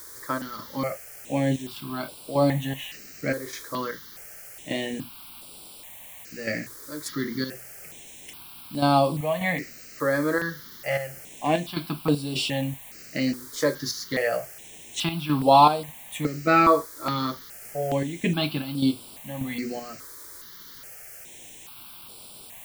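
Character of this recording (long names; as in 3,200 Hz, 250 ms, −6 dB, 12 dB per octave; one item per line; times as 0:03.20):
chopped level 1.7 Hz, depth 60%, duty 65%
a quantiser's noise floor 8 bits, dither triangular
notches that jump at a steady rate 2.4 Hz 740–6,400 Hz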